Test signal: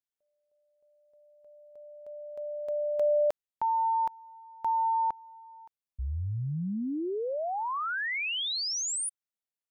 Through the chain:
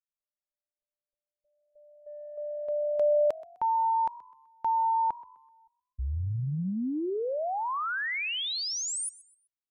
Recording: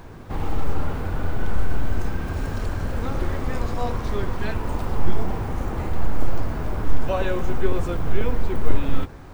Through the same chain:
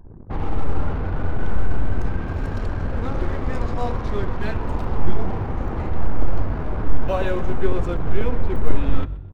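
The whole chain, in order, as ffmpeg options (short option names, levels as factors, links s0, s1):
-filter_complex "[0:a]anlmdn=1.58,highshelf=f=2100:g=-2.5,asplit=4[s0][s1][s2][s3];[s1]adelay=127,afreqshift=47,volume=0.1[s4];[s2]adelay=254,afreqshift=94,volume=0.0339[s5];[s3]adelay=381,afreqshift=141,volume=0.0116[s6];[s0][s4][s5][s6]amix=inputs=4:normalize=0,volume=1.19"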